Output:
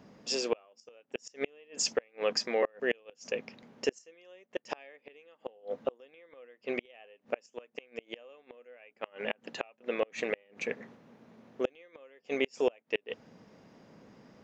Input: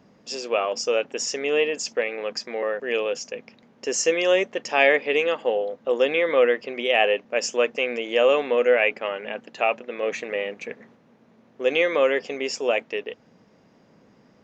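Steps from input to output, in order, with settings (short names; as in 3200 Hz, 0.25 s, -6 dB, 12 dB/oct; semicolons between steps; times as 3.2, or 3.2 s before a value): flipped gate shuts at -16 dBFS, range -35 dB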